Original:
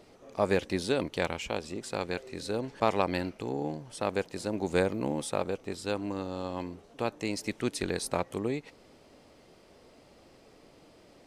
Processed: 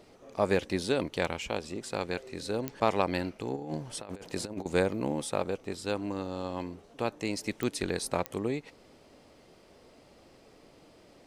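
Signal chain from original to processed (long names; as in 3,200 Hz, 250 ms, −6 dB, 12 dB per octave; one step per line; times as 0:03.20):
0:03.56–0:04.66: compressor whose output falls as the input rises −36 dBFS, ratio −0.5
digital clicks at 0:02.68/0:07.63/0:08.26, −17 dBFS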